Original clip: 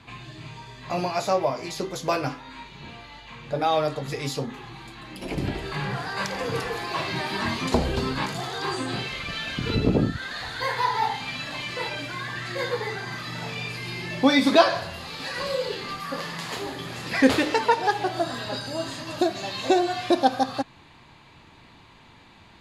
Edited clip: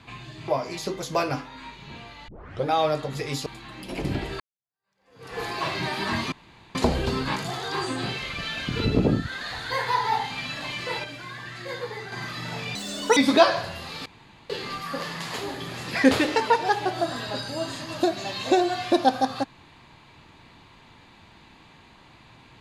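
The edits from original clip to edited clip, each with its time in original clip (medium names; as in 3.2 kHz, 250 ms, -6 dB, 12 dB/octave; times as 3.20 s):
0.48–1.41 s: delete
3.21 s: tape start 0.37 s
4.39–4.79 s: delete
5.73–6.73 s: fade in exponential
7.65 s: insert room tone 0.43 s
11.94–13.02 s: gain -5.5 dB
13.65–14.35 s: speed 168%
15.24–15.68 s: room tone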